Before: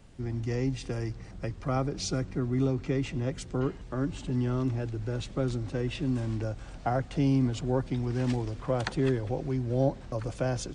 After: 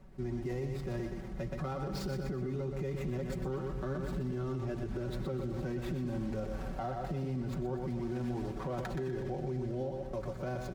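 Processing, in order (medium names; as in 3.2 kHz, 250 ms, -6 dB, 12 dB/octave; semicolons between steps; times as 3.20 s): median filter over 15 samples; Doppler pass-by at 4.70 s, 9 m/s, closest 7.9 m; gain riding within 4 dB 0.5 s; on a send at -19.5 dB: reverberation RT60 2.4 s, pre-delay 3 ms; on the sum: compression, threshold -38 dBFS, peak gain reduction 9.5 dB; comb 5.3 ms, depth 76%; feedback delay 123 ms, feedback 42%, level -7 dB; peak limiter -37 dBFS, peak gain reduction 11.5 dB; trim +8.5 dB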